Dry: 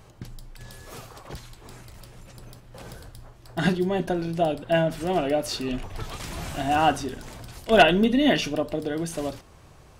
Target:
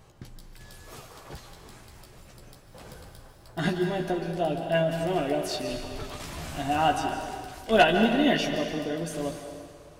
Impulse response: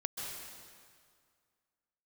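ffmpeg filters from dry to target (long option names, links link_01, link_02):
-filter_complex "[0:a]asplit=2[link_01][link_02];[1:a]atrim=start_sample=2205,lowshelf=frequency=160:gain=-9,adelay=14[link_03];[link_02][link_03]afir=irnorm=-1:irlink=0,volume=-3.5dB[link_04];[link_01][link_04]amix=inputs=2:normalize=0,volume=-4.5dB"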